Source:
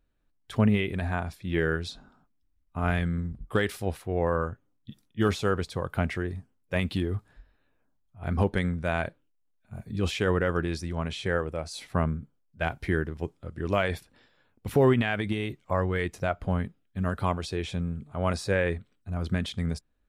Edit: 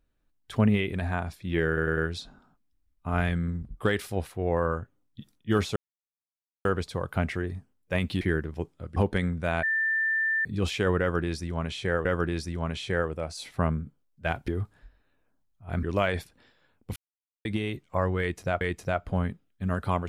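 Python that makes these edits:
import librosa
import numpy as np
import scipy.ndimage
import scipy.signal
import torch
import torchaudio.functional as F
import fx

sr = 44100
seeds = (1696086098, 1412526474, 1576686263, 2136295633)

y = fx.edit(x, sr, fx.stutter(start_s=1.67, slice_s=0.1, count=4),
    fx.insert_silence(at_s=5.46, length_s=0.89),
    fx.swap(start_s=7.02, length_s=1.35, other_s=12.84, other_length_s=0.75),
    fx.bleep(start_s=9.04, length_s=0.82, hz=1780.0, db=-23.0),
    fx.repeat(start_s=10.41, length_s=1.05, count=2),
    fx.silence(start_s=14.72, length_s=0.49),
    fx.repeat(start_s=15.96, length_s=0.41, count=2), tone=tone)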